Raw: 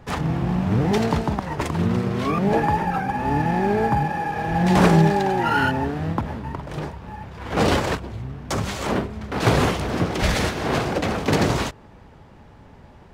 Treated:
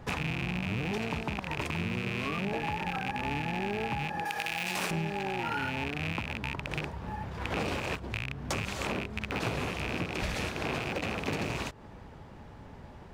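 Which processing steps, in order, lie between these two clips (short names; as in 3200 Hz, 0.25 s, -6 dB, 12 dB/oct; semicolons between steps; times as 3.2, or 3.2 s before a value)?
rattling part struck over -28 dBFS, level -12 dBFS; 4.25–4.91 tilt +4 dB/oct; compressor 6:1, threshold -29 dBFS, peak gain reduction 16.5 dB; gain -1.5 dB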